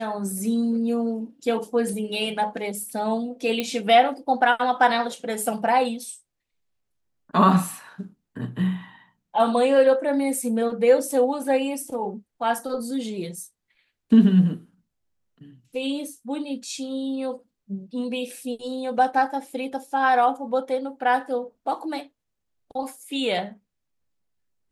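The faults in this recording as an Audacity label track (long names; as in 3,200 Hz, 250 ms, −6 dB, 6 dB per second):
3.600000	3.600000	click −11 dBFS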